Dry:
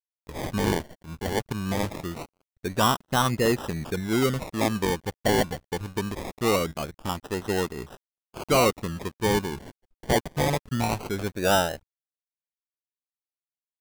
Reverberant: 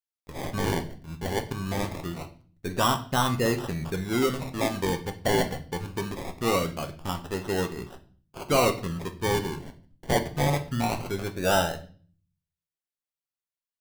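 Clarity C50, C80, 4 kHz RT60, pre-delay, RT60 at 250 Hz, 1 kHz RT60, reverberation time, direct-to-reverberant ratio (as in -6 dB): 14.0 dB, 18.0 dB, 0.45 s, 6 ms, 0.75 s, 0.40 s, 0.45 s, 5.5 dB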